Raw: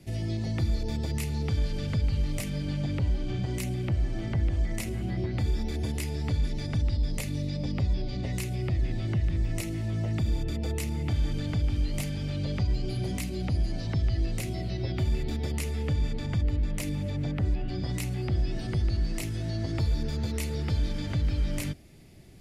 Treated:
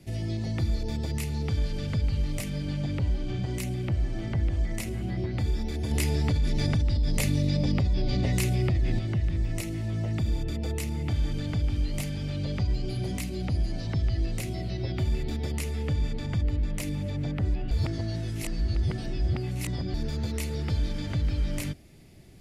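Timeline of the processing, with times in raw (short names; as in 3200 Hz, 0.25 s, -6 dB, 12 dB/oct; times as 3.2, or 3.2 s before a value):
5.91–8.99 fast leveller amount 70%
17.71–19.94 reverse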